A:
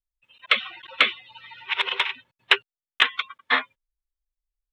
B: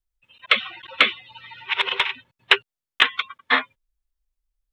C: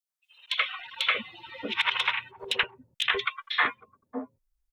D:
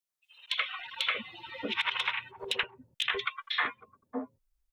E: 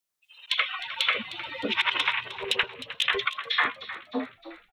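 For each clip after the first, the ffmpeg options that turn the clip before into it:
-af "lowshelf=f=270:g=6.5,volume=1.26"
-filter_complex "[0:a]acrossover=split=440|4100[s0][s1][s2];[s1]alimiter=limit=0.282:level=0:latency=1:release=122[s3];[s0][s3][s2]amix=inputs=3:normalize=0,acrossover=split=630|3100[s4][s5][s6];[s5]adelay=80[s7];[s4]adelay=630[s8];[s8][s7][s6]amix=inputs=3:normalize=0"
-af "acompressor=threshold=0.0316:ratio=2"
-filter_complex "[0:a]asplit=6[s0][s1][s2][s3][s4][s5];[s1]adelay=308,afreqshift=72,volume=0.2[s6];[s2]adelay=616,afreqshift=144,volume=0.0955[s7];[s3]adelay=924,afreqshift=216,volume=0.0457[s8];[s4]adelay=1232,afreqshift=288,volume=0.0221[s9];[s5]adelay=1540,afreqshift=360,volume=0.0106[s10];[s0][s6][s7][s8][s9][s10]amix=inputs=6:normalize=0,volume=1.88"

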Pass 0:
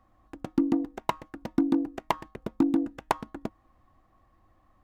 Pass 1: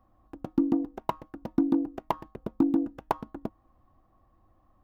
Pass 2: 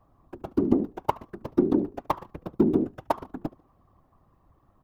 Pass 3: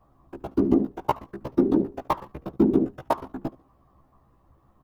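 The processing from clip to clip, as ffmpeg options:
-af "equalizer=f=2000:t=o:w=1:g=-8,equalizer=f=4000:t=o:w=1:g=-4,equalizer=f=8000:t=o:w=1:g=-11"
-af "aecho=1:1:72|144:0.0794|0.0278,afftfilt=real='hypot(re,im)*cos(2*PI*random(0))':imag='hypot(re,im)*sin(2*PI*random(1))':win_size=512:overlap=0.75,volume=2.66"
-filter_complex "[0:a]asplit=2[s0][s1];[s1]adelay=15,volume=0.794[s2];[s0][s2]amix=inputs=2:normalize=0"

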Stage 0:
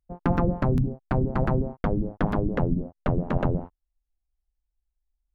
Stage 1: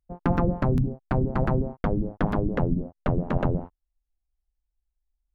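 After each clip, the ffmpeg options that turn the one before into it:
-af anull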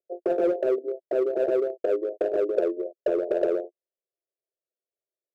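-filter_complex "[0:a]asuperpass=centerf=480:order=12:qfactor=1.5,asplit=2[s0][s1];[s1]asoftclip=type=hard:threshold=0.0211,volume=0.708[s2];[s0][s2]amix=inputs=2:normalize=0,volume=1.88"

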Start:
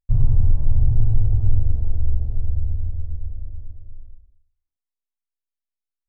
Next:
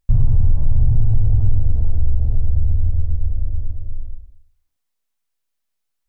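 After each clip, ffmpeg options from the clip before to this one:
-filter_complex "[0:a]bandreject=f=370:w=12,asplit=2[s0][s1];[s1]alimiter=limit=0.141:level=0:latency=1:release=11,volume=1.26[s2];[s0][s2]amix=inputs=2:normalize=0,acompressor=threshold=0.112:ratio=2,volume=1.78"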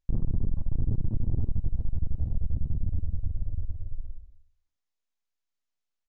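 -af "aresample=16000,aresample=44100,asoftclip=type=tanh:threshold=0.2,aeval=exprs='0.2*(cos(1*acos(clip(val(0)/0.2,-1,1)))-cos(1*PI/2))+0.0794*(cos(2*acos(clip(val(0)/0.2,-1,1)))-cos(2*PI/2))':c=same,volume=0.376"

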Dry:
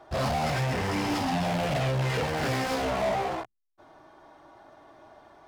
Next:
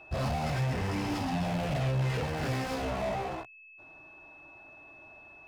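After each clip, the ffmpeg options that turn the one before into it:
-af "lowshelf=f=190:g=8.5,aeval=exprs='val(0)+0.00631*sin(2*PI*2600*n/s)':c=same,volume=0.473"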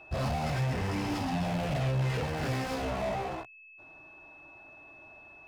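-af anull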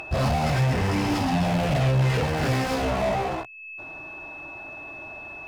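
-af "acompressor=mode=upward:threshold=0.01:ratio=2.5,volume=2.51"

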